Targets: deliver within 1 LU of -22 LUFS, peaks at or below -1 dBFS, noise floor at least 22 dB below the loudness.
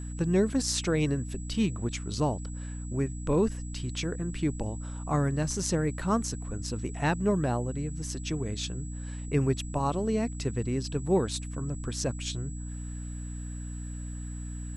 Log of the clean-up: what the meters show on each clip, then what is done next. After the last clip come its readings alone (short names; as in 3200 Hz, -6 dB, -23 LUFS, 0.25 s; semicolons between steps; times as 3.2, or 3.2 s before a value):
hum 60 Hz; harmonics up to 300 Hz; hum level -35 dBFS; steady tone 7800 Hz; tone level -48 dBFS; loudness -31.0 LUFS; peak -12.5 dBFS; loudness target -22.0 LUFS
-> notches 60/120/180/240/300 Hz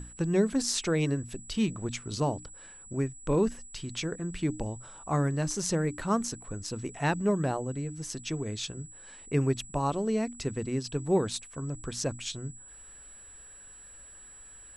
hum none; steady tone 7800 Hz; tone level -48 dBFS
-> notch 7800 Hz, Q 30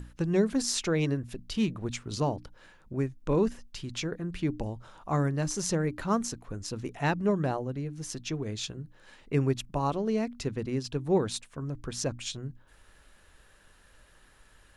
steady tone none; loudness -31.0 LUFS; peak -13.5 dBFS; loudness target -22.0 LUFS
-> gain +9 dB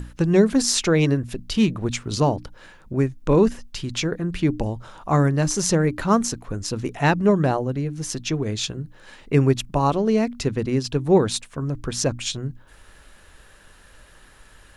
loudness -22.0 LUFS; peak -4.5 dBFS; noise floor -51 dBFS